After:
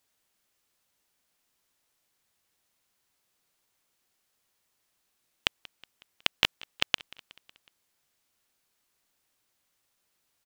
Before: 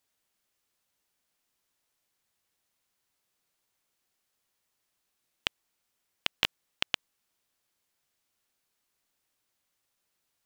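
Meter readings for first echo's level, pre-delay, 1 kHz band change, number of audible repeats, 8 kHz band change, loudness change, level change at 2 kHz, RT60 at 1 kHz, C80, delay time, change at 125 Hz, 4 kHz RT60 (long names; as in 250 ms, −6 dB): −22.0 dB, no reverb audible, +3.5 dB, 3, +3.5 dB, +3.5 dB, +3.5 dB, no reverb audible, no reverb audible, 184 ms, +3.5 dB, no reverb audible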